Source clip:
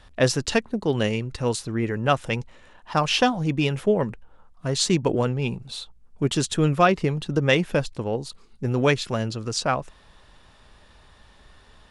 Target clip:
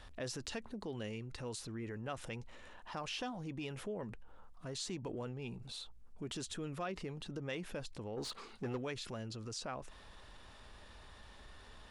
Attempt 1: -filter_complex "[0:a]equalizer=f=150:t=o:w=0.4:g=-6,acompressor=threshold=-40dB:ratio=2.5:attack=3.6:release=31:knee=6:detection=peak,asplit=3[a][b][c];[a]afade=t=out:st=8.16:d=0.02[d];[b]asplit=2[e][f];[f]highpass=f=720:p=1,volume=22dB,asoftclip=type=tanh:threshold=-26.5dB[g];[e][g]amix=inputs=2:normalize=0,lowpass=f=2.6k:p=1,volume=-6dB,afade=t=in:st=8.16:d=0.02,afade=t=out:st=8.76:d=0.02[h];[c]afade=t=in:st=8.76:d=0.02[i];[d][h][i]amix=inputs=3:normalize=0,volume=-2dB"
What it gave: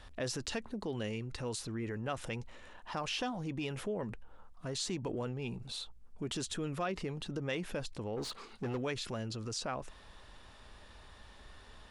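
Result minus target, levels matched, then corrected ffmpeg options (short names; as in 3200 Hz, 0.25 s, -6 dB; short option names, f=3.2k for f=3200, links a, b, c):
compressor: peak gain reduction -5 dB
-filter_complex "[0:a]equalizer=f=150:t=o:w=0.4:g=-6,acompressor=threshold=-48dB:ratio=2.5:attack=3.6:release=31:knee=6:detection=peak,asplit=3[a][b][c];[a]afade=t=out:st=8.16:d=0.02[d];[b]asplit=2[e][f];[f]highpass=f=720:p=1,volume=22dB,asoftclip=type=tanh:threshold=-26.5dB[g];[e][g]amix=inputs=2:normalize=0,lowpass=f=2.6k:p=1,volume=-6dB,afade=t=in:st=8.16:d=0.02,afade=t=out:st=8.76:d=0.02[h];[c]afade=t=in:st=8.76:d=0.02[i];[d][h][i]amix=inputs=3:normalize=0,volume=-2dB"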